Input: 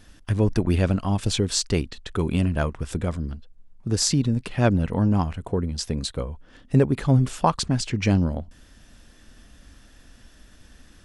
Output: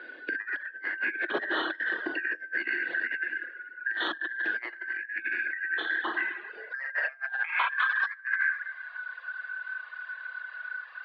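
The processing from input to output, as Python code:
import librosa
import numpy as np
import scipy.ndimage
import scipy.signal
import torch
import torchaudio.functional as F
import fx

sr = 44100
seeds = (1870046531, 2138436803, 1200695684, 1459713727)

y = fx.band_shuffle(x, sr, order='3142')
y = 10.0 ** (-11.0 / 20.0) * (np.abs((y / 10.0 ** (-11.0 / 20.0) + 3.0) % 4.0 - 2.0) - 1.0)
y = fx.air_absorb(y, sr, metres=360.0)
y = fx.rev_schroeder(y, sr, rt60_s=1.2, comb_ms=25, drr_db=-1.5)
y = fx.over_compress(y, sr, threshold_db=-26.0, ratio=-0.5)
y = fx.filter_sweep_highpass(y, sr, from_hz=330.0, to_hz=1100.0, start_s=6.3, end_s=7.77, q=7.3)
y = scipy.signal.sosfilt(scipy.signal.ellip(3, 1.0, 40, [150.0, 3800.0], 'bandpass', fs=sr, output='sos'), y)
y = fx.dereverb_blind(y, sr, rt60_s=0.64)
y = fx.band_squash(y, sr, depth_pct=40)
y = y * librosa.db_to_amplitude(-4.0)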